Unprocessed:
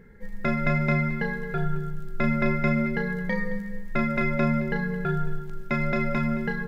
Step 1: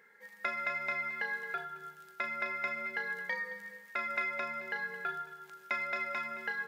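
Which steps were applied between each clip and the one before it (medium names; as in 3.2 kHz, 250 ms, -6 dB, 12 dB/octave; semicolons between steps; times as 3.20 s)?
compression 3:1, threshold -26 dBFS, peak gain reduction 6.5 dB; high-pass 930 Hz 12 dB/octave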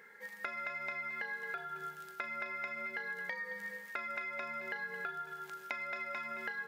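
compression 6:1, threshold -43 dBFS, peak gain reduction 13 dB; trim +5 dB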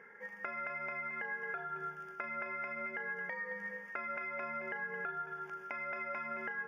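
in parallel at +1 dB: peak limiter -32.5 dBFS, peak gain reduction 11 dB; on the sum: boxcar filter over 11 samples; trim -3 dB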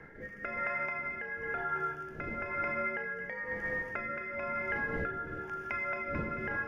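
wind noise 380 Hz -53 dBFS; gated-style reverb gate 420 ms rising, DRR 7 dB; rotary cabinet horn 1 Hz; trim +6.5 dB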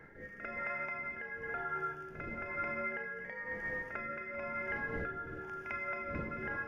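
reverse echo 48 ms -10.5 dB; trim -4 dB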